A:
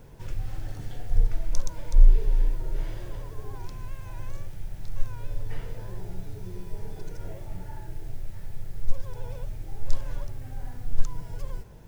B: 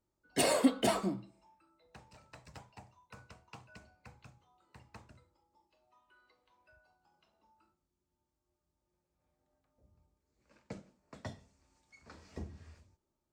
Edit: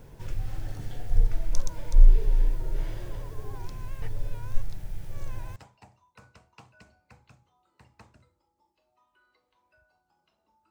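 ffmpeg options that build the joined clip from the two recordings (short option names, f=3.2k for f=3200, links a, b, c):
-filter_complex "[0:a]apad=whole_dur=10.7,atrim=end=10.7,asplit=2[a][b];[a]atrim=end=4.022[c];[b]atrim=start=4.018:end=5.562,asetpts=PTS-STARTPTS,areverse[d];[1:a]atrim=start=2.508:end=7.65[e];[c][d]acrossfade=d=0.004:c1=hsin:c2=hsin[f];[f][e]acrossfade=d=0.004:c1=hsin:c2=hsin"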